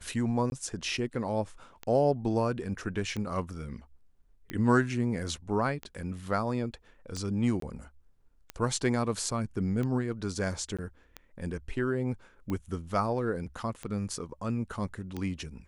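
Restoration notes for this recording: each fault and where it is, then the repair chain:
scratch tick 45 rpm −22 dBFS
0:00.50–0:00.52: drop-out 21 ms
0:07.60–0:07.62: drop-out 23 ms
0:10.77–0:10.79: drop-out 16 ms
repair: click removal
repair the gap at 0:00.50, 21 ms
repair the gap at 0:07.60, 23 ms
repair the gap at 0:10.77, 16 ms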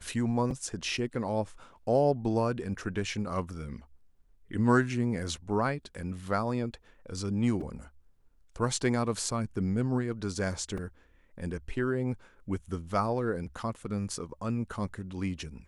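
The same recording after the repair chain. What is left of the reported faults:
none of them is left

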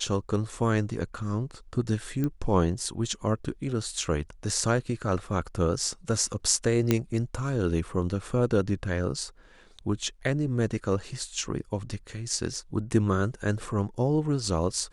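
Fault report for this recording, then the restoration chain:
0:02.24: click −17 dBFS
0:06.91: click −8 dBFS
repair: click removal

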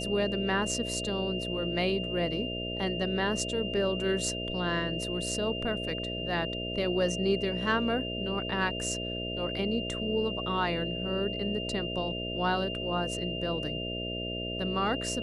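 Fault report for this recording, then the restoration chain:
mains buzz 60 Hz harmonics 11 −37 dBFS
whistle 2,800 Hz −36 dBFS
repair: hum removal 60 Hz, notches 11
notch filter 2,800 Hz, Q 30

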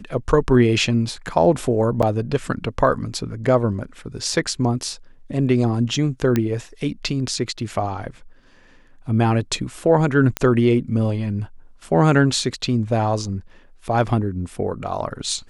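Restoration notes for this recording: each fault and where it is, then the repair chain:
0:02.02–0:02.03: drop-out 6.6 ms
0:06.36: click −7 dBFS
0:10.37: click −6 dBFS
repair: click removal
repair the gap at 0:02.02, 6.6 ms

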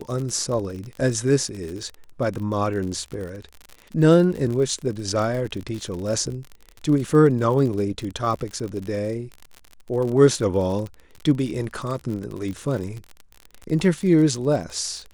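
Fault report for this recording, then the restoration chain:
surface crackle 43 per second −28 dBFS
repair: click removal

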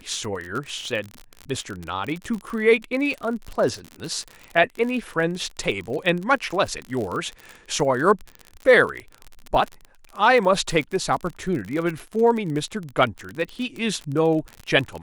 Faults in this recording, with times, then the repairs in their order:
surface crackle 40 per second −27 dBFS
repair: click removal

